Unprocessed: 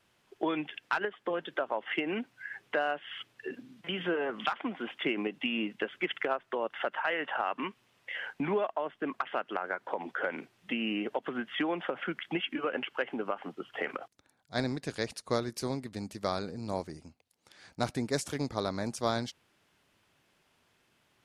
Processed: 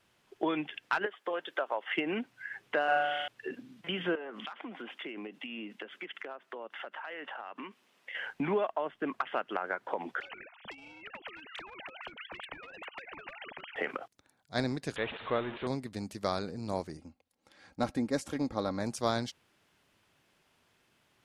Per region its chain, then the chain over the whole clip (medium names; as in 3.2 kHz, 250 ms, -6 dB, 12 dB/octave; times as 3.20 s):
1.06–1.97 s: high-pass 430 Hz + treble shelf 7.9 kHz +5.5 dB
2.84–3.28 s: band-stop 1 kHz, Q 16 + flutter echo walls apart 6.8 m, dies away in 1.4 s
4.15–8.15 s: high-pass 190 Hz 24 dB/octave + compression 5:1, threshold -39 dBFS
10.20–13.76 s: formants replaced by sine waves + compression 12:1, threshold -35 dBFS + spectrum-flattening compressor 10:1
14.96–15.67 s: jump at every zero crossing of -32.5 dBFS + steep low-pass 3.6 kHz 96 dB/octave + bass shelf 280 Hz -11 dB
16.97–18.80 s: treble shelf 2.3 kHz -8.5 dB + comb 3.7 ms, depth 47%
whole clip: none